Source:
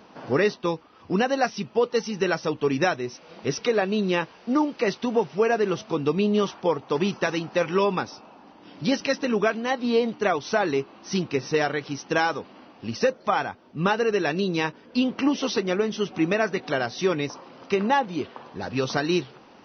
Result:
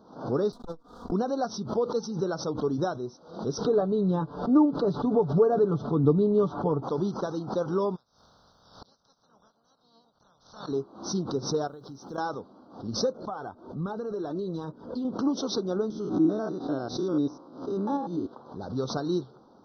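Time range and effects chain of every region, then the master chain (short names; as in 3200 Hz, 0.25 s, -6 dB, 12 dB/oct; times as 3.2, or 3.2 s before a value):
0.52–1.12 minimum comb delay 4.2 ms + gate -48 dBFS, range -24 dB + core saturation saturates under 270 Hz
3.64–6.83 LPF 3100 Hz + low shelf 230 Hz +10.5 dB + comb 6.9 ms, depth 58%
7.95–10.67 spectral limiter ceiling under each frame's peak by 29 dB + bell 340 Hz -10.5 dB 0.58 oct + flipped gate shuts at -27 dBFS, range -30 dB
11.67–12.18 block floating point 7-bit + compressor 5:1, threshold -35 dBFS
13.17–15.05 LPF 3400 Hz 6 dB/oct + phaser 1.3 Hz, delay 3.4 ms, feedback 38% + compressor 10:1, threshold -23 dBFS
15.9–18.32 stepped spectrum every 0.1 s + bell 300 Hz +12.5 dB 0.27 oct
whole clip: Chebyshev band-stop 1400–3700 Hz, order 3; tilt shelf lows +4 dB, about 1200 Hz; backwards sustainer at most 110 dB/s; gain -7.5 dB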